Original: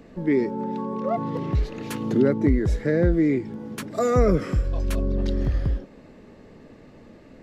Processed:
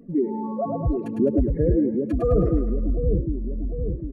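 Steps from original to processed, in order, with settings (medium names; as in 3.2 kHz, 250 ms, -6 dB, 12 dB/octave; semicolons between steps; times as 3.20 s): spectral contrast enhancement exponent 2.2; tempo 1.8×; two-band feedback delay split 480 Hz, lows 749 ms, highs 105 ms, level -4 dB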